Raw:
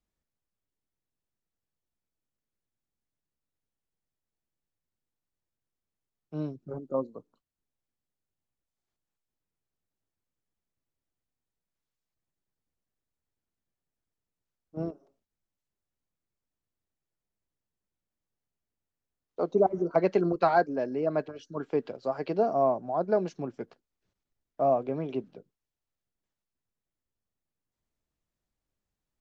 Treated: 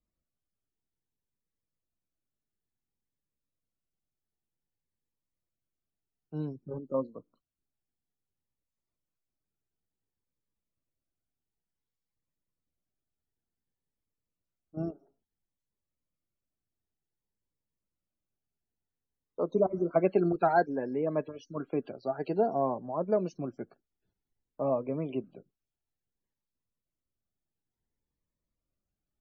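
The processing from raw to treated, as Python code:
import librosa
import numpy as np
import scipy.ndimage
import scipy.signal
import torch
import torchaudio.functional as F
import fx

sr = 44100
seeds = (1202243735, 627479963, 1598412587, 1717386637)

y = fx.spec_topn(x, sr, count=64)
y = fx.notch_cascade(y, sr, direction='rising', hz=0.56)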